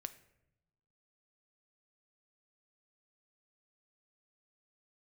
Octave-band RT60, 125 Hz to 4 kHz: 1.4, 1.4, 1.0, 0.75, 0.75, 0.50 s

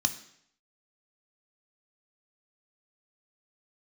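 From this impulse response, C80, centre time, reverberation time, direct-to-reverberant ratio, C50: 16.0 dB, 7 ms, 0.70 s, 8.0 dB, 13.0 dB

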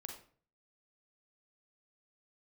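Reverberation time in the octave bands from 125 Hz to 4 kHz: 0.65, 0.55, 0.50, 0.45, 0.40, 0.35 s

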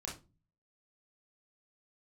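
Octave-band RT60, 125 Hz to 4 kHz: 0.70, 0.55, 0.35, 0.25, 0.20, 0.20 s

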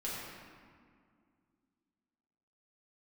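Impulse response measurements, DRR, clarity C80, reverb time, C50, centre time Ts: -8.5 dB, 0.0 dB, 2.1 s, -1.5 dB, 0.119 s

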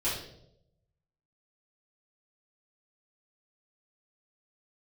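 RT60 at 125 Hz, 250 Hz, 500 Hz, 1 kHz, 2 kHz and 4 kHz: 1.3, 0.90, 0.95, 0.60, 0.50, 0.60 s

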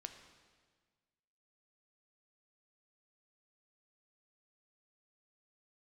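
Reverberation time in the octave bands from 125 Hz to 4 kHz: 1.8, 1.7, 1.6, 1.5, 1.5, 1.4 s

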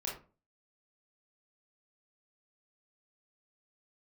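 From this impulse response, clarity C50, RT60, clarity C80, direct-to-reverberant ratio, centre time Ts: 5.0 dB, 0.35 s, 12.0 dB, -4.0 dB, 34 ms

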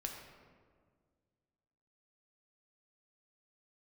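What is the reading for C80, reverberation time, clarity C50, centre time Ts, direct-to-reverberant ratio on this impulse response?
5.5 dB, 1.8 s, 4.0 dB, 50 ms, 1.5 dB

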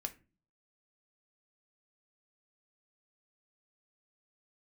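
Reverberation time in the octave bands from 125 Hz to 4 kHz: 0.65, 0.60, 0.35, 0.30, 0.30, 0.20 s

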